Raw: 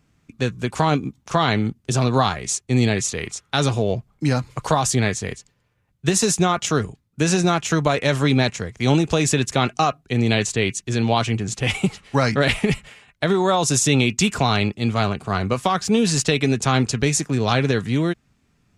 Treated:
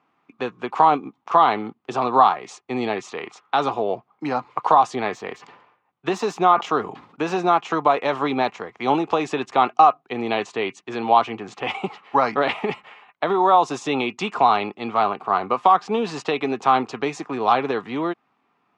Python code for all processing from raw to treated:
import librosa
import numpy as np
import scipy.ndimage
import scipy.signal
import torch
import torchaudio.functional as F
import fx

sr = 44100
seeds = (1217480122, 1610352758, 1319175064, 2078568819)

y = fx.chain(x, sr, fx.resample_bad(factor=2, down='filtered', up='hold'),
    fx.sustainer(db_per_s=76.0), at=(5.08, 7.39))
y = fx.dynamic_eq(y, sr, hz=1900.0, q=0.82, threshold_db=-32.0, ratio=4.0, max_db=-4)
y = scipy.signal.sosfilt(scipy.signal.cheby1(2, 1.0, [340.0, 2700.0], 'bandpass', fs=sr, output='sos'), y)
y = fx.band_shelf(y, sr, hz=960.0, db=11.0, octaves=1.0)
y = F.gain(torch.from_numpy(y), -1.0).numpy()